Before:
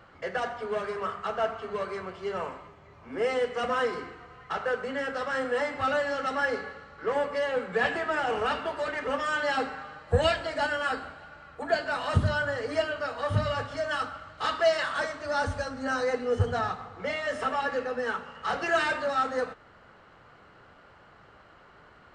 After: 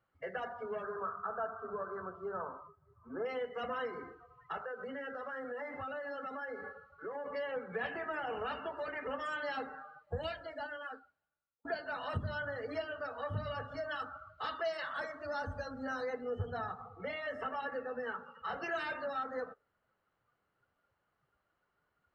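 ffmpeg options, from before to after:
ffmpeg -i in.wav -filter_complex "[0:a]asettb=1/sr,asplit=3[link_01][link_02][link_03];[link_01]atrim=end=0.834[link_04];[link_02]atrim=start=0.83:end=3.26,asetpts=PTS-STARTPTS,afade=type=in:duration=0.004:curve=qsin,afade=type=out:start_time=2.426:duration=0.004:curve=qsin,highshelf=frequency=1800:width_type=q:width=3:gain=-6.5[link_05];[link_03]atrim=start=3.256[link_06];[link_04][link_05]acrossfade=duration=0.004:curve1=hsin:curve2=qsin[link_07];[link_07][link_06]acrossfade=duration=0.004:curve1=qsin:curve2=hsin,asettb=1/sr,asplit=3[link_08][link_09][link_10];[link_08]atrim=end=4.604[link_11];[link_09]atrim=start=4.6:end=7.26,asetpts=PTS-STARTPTS,afade=type=in:duration=0.004:curve=qsin,afade=type=out:start_time=2.656:duration=0.004:curve=qsin,acompressor=threshold=-33dB:ratio=3:attack=3.2:release=140:knee=1:detection=peak[link_12];[link_10]atrim=start=7.256[link_13];[link_11][link_12]acrossfade=duration=0.004:curve1=hsin:curve2=qsin[link_14];[link_14][link_13]acrossfade=duration=0.004:curve1=qsin:curve2=hsin,asplit=2[link_15][link_16];[link_15]atrim=end=11.65,asetpts=PTS-STARTPTS,afade=type=out:start_time=9.43:duration=2.22[link_17];[link_16]atrim=start=11.65,asetpts=PTS-STARTPTS,afade=type=in:duration=0.004:curve=hsin[link_18];[link_17][link_18]concat=n=2:v=0:a=1,afftdn=noise_reduction=22:noise_floor=-40,acompressor=threshold=-34dB:ratio=2,volume=-5dB" out.wav

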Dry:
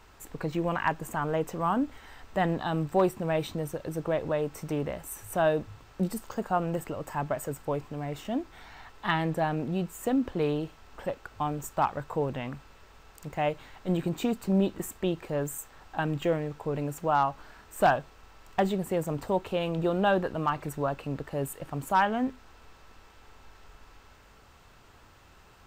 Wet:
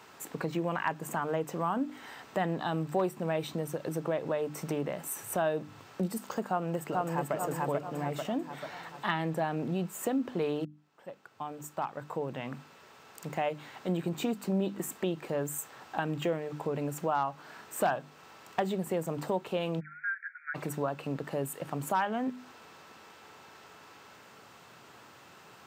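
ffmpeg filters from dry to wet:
ffmpeg -i in.wav -filter_complex "[0:a]asplit=2[link_01][link_02];[link_02]afade=type=in:start_time=6.48:duration=0.01,afade=type=out:start_time=7.34:duration=0.01,aecho=0:1:440|880|1320|1760|2200|2640:0.891251|0.401063|0.180478|0.0812152|0.0365469|0.0164461[link_03];[link_01][link_03]amix=inputs=2:normalize=0,asplit=3[link_04][link_05][link_06];[link_04]afade=type=out:start_time=19.79:duration=0.02[link_07];[link_05]asuperpass=centerf=1800:order=20:qfactor=1.9,afade=type=in:start_time=19.79:duration=0.02,afade=type=out:start_time=20.54:duration=0.02[link_08];[link_06]afade=type=in:start_time=20.54:duration=0.02[link_09];[link_07][link_08][link_09]amix=inputs=3:normalize=0,asplit=2[link_10][link_11];[link_10]atrim=end=10.65,asetpts=PTS-STARTPTS,afade=type=out:start_time=10.646:duration=0.004:curve=hsin[link_12];[link_11]atrim=start=10.65,asetpts=PTS-STARTPTS,afade=type=in:duration=2.86[link_13];[link_12][link_13]concat=n=2:v=0:a=1,highpass=frequency=130:width=0.5412,highpass=frequency=130:width=1.3066,bandreject=frequency=50:width_type=h:width=6,bandreject=frequency=100:width_type=h:width=6,bandreject=frequency=150:width_type=h:width=6,bandreject=frequency=200:width_type=h:width=6,bandreject=frequency=250:width_type=h:width=6,bandreject=frequency=300:width_type=h:width=6,acompressor=threshold=-37dB:ratio=2,volume=4dB" out.wav

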